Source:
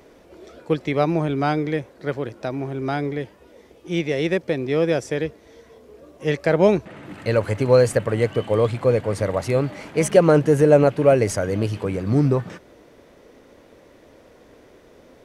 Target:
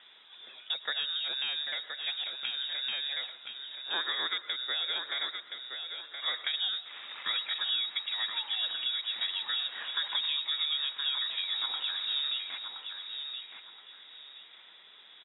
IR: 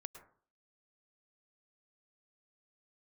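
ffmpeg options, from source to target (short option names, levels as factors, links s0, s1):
-filter_complex "[0:a]acrossover=split=180|440[s0][s1][s2];[s0]acompressor=threshold=0.0355:ratio=4[s3];[s1]acompressor=threshold=0.0224:ratio=4[s4];[s2]acompressor=threshold=0.0282:ratio=4[s5];[s3][s4][s5]amix=inputs=3:normalize=0,lowpass=f=3300:t=q:w=0.5098,lowpass=f=3300:t=q:w=0.6013,lowpass=f=3300:t=q:w=0.9,lowpass=f=3300:t=q:w=2.563,afreqshift=-3900,acrossover=split=150 2200:gain=0.1 1 0.224[s6][s7][s8];[s6][s7][s8]amix=inputs=3:normalize=0,aecho=1:1:1022|2044|3066:0.447|0.116|0.0302,asplit=2[s9][s10];[1:a]atrim=start_sample=2205[s11];[s10][s11]afir=irnorm=-1:irlink=0,volume=1.58[s12];[s9][s12]amix=inputs=2:normalize=0,volume=0.708"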